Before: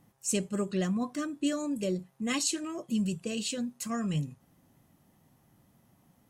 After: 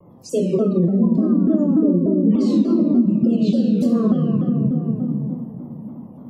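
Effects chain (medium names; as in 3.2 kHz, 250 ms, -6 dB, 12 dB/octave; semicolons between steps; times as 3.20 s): peak limiter -25 dBFS, peak gain reduction 7.5 dB; 0.62–3.06 s: peaking EQ 220 Hz +11 dB 1.2 oct; spectral gate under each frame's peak -25 dB strong; reverberation RT60 2.3 s, pre-delay 3 ms, DRR -6.5 dB; compression 6:1, threshold -26 dBFS, peak gain reduction 17.5 dB; graphic EQ 125/250/500/1000/2000/4000/8000 Hz +10/+11/+12/+9/-7/+10/-10 dB; vibrato with a chosen wave saw down 3.4 Hz, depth 160 cents; trim -2.5 dB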